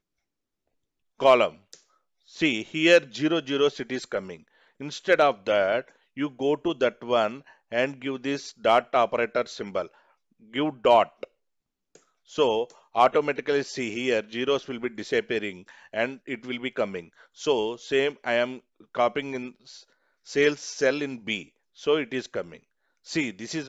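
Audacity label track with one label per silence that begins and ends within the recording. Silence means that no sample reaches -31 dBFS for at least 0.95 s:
11.240000	12.350000	silence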